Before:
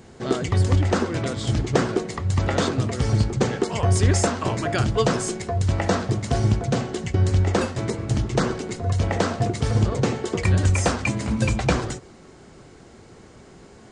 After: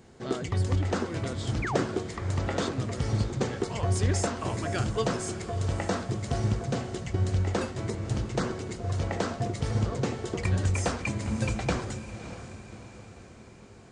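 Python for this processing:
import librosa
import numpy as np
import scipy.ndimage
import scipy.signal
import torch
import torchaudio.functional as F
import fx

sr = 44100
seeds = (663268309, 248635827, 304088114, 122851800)

y = fx.spec_paint(x, sr, seeds[0], shape='fall', start_s=1.62, length_s=0.24, low_hz=200.0, high_hz=2600.0, level_db=-25.0)
y = fx.echo_diffused(y, sr, ms=597, feedback_pct=51, wet_db=-12.0)
y = F.gain(torch.from_numpy(y), -7.5).numpy()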